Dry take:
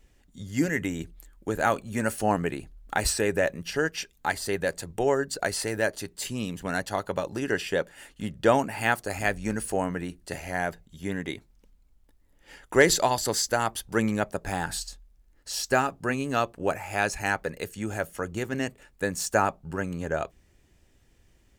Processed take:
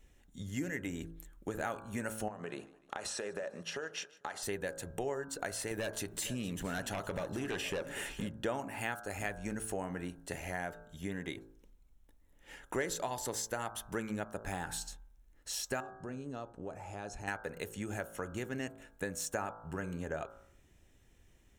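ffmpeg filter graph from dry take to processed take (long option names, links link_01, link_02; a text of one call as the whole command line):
ffmpeg -i in.wav -filter_complex "[0:a]asettb=1/sr,asplit=3[link_01][link_02][link_03];[link_01]atrim=end=2.284[link_04];[link_02]atrim=start=2.28:end=4.43,asetpts=PTS-STARTPTS,afade=type=in:duration=0.004:curve=qsin,afade=type=out:start_time=2.146:duration=0.004:curve=qsin,highpass=230,equalizer=frequency=290:width_type=q:width=4:gain=-7,equalizer=frequency=570:width_type=q:width=4:gain=5,equalizer=frequency=1200:width_type=q:width=4:gain=4,equalizer=frequency=2200:width_type=q:width=4:gain=-5,equalizer=frequency=8500:width_type=q:width=4:gain=-8,lowpass=frequency=9700:width=0.5412,lowpass=frequency=9700:width=1.3066,acompressor=threshold=-29dB:ratio=10:attack=3.2:release=140:knee=1:detection=peak,aecho=1:1:149|298|447|596:0.0668|0.0368|0.0202|0.0111,atrim=end_sample=94815[link_05];[link_03]atrim=start=4.426[link_06];[link_04][link_05]acrossfade=duration=0.004:curve1=hsin:curve2=qsin[link_07];[link_07][link_06]acrossfade=duration=0.004:curve1=qsin:curve2=hsin,asettb=1/sr,asplit=3[link_08][link_09][link_10];[link_08]atrim=end=5.714[link_11];[link_09]atrim=start=5.71:end=8.29,asetpts=PTS-STARTPTS,afade=type=in:duration=0.004:curve=qsin,afade=type=out:start_time=2.576:duration=0.004:curve=qsin,aeval=exprs='0.282*sin(PI/2*2.82*val(0)/0.282)':channel_layout=same,acompressor=threshold=-33dB:ratio=2:attack=3.2:release=140:knee=1:detection=peak,aecho=1:1:465:0.158,atrim=end_sample=113778[link_12];[link_10]atrim=start=8.286[link_13];[link_11][link_12]acrossfade=duration=0.004:curve1=hsin:curve2=qsin[link_14];[link_14][link_13]acrossfade=duration=0.004:curve1=qsin:curve2=hsin,asettb=1/sr,asplit=3[link_15][link_16][link_17];[link_15]atrim=end=15.804[link_18];[link_16]atrim=start=15.8:end=17.28,asetpts=PTS-STARTPTS,afade=type=in:duration=0.004:curve=qsin,afade=type=out:start_time=1.476:duration=0.004:curve=qsin,lowpass=5600,equalizer=frequency=2100:width_type=o:width=1.5:gain=-13.5,acompressor=threshold=-39dB:ratio=2.5:attack=3.2:release=140:knee=1:detection=peak[link_19];[link_17]atrim=start=17.276[link_20];[link_18][link_19]acrossfade=duration=0.004:curve1=hsin:curve2=qsin[link_21];[link_21][link_20]acrossfade=duration=0.004:curve1=qsin:curve2=hsin,bandreject=frequency=4700:width=5.6,bandreject=frequency=54.81:width_type=h:width=4,bandreject=frequency=109.62:width_type=h:width=4,bandreject=frequency=164.43:width_type=h:width=4,bandreject=frequency=219.24:width_type=h:width=4,bandreject=frequency=274.05:width_type=h:width=4,bandreject=frequency=328.86:width_type=h:width=4,bandreject=frequency=383.67:width_type=h:width=4,bandreject=frequency=438.48:width_type=h:width=4,bandreject=frequency=493.29:width_type=h:width=4,bandreject=frequency=548.1:width_type=h:width=4,bandreject=frequency=602.91:width_type=h:width=4,bandreject=frequency=657.72:width_type=h:width=4,bandreject=frequency=712.53:width_type=h:width=4,bandreject=frequency=767.34:width_type=h:width=4,bandreject=frequency=822.15:width_type=h:width=4,bandreject=frequency=876.96:width_type=h:width=4,bandreject=frequency=931.77:width_type=h:width=4,bandreject=frequency=986.58:width_type=h:width=4,bandreject=frequency=1041.39:width_type=h:width=4,bandreject=frequency=1096.2:width_type=h:width=4,bandreject=frequency=1151.01:width_type=h:width=4,bandreject=frequency=1205.82:width_type=h:width=4,bandreject=frequency=1260.63:width_type=h:width=4,bandreject=frequency=1315.44:width_type=h:width=4,bandreject=frequency=1370.25:width_type=h:width=4,bandreject=frequency=1425.06:width_type=h:width=4,bandreject=frequency=1479.87:width_type=h:width=4,bandreject=frequency=1534.68:width_type=h:width=4,bandreject=frequency=1589.49:width_type=h:width=4,bandreject=frequency=1644.3:width_type=h:width=4,acompressor=threshold=-34dB:ratio=3,volume=-2.5dB" out.wav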